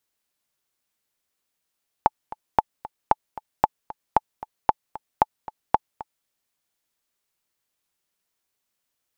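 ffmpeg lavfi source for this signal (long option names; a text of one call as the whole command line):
ffmpeg -f lavfi -i "aevalsrc='pow(10,(-2-18*gte(mod(t,2*60/228),60/228))/20)*sin(2*PI*865*mod(t,60/228))*exp(-6.91*mod(t,60/228)/0.03)':duration=4.21:sample_rate=44100" out.wav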